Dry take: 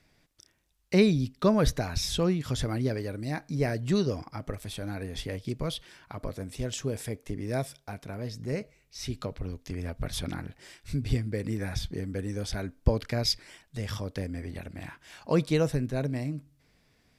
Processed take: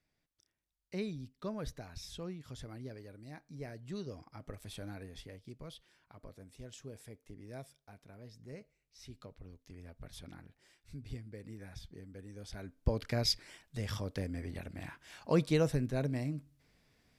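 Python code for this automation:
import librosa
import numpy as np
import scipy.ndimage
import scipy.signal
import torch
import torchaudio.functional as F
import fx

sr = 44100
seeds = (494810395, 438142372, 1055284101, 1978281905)

y = fx.gain(x, sr, db=fx.line((3.88, -17.0), (4.79, -8.0), (5.39, -16.5), (12.3, -16.5), (13.13, -4.0)))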